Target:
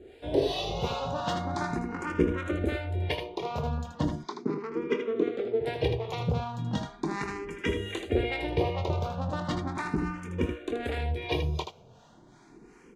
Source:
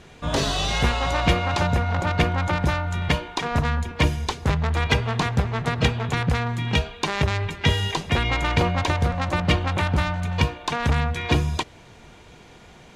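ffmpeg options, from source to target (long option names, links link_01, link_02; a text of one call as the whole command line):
ffmpeg -i in.wav -filter_complex "[0:a]equalizer=frequency=370:width_type=o:width=1.3:gain=14.5,acrossover=split=680[link_01][link_02];[link_01]aeval=exprs='val(0)*(1-0.7/2+0.7/2*cos(2*PI*2.7*n/s))':channel_layout=same[link_03];[link_02]aeval=exprs='val(0)*(1-0.7/2-0.7/2*cos(2*PI*2.7*n/s))':channel_layout=same[link_04];[link_03][link_04]amix=inputs=2:normalize=0,asettb=1/sr,asplit=3[link_05][link_06][link_07];[link_05]atrim=end=4.154[link_08];[link_06]atrim=start=4.15:end=5.61,asetpts=PTS-STARTPTS,afade=type=in:duration=0.004:curve=qsin,afade=type=out:start_time=1.456:duration=0.004:curve=qsin,highpass=frequency=180:width=0.5412,highpass=frequency=180:width=1.3066,equalizer=frequency=440:width_type=q:width=4:gain=6,equalizer=frequency=780:width_type=q:width=4:gain=-8,equalizer=frequency=1700:width_type=q:width=4:gain=-10,equalizer=frequency=2700:width_type=q:width=4:gain=-6,equalizer=frequency=4000:width_type=q:width=4:gain=-3,lowpass=frequency=4900:width=0.5412,lowpass=frequency=4900:width=1.3066[link_09];[link_07]atrim=start=5.606[link_10];[link_08][link_09]acrossfade=duration=0.004:curve1=hsin:curve2=qsin[link_11];[link_11][link_10]acrossfade=duration=0.004:curve1=qsin:curve2=hsin,aecho=1:1:24|79:0.335|0.447,asplit=2[link_12][link_13];[link_13]afreqshift=0.37[link_14];[link_12][link_14]amix=inputs=2:normalize=1,volume=-7dB" out.wav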